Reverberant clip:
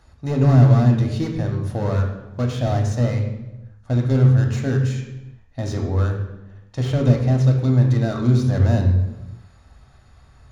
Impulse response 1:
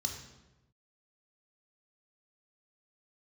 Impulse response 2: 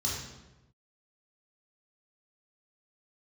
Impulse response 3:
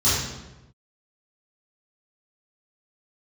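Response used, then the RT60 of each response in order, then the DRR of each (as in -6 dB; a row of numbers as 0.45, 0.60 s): 1; 1.0, 1.0, 1.0 s; 2.0, -5.5, -13.5 dB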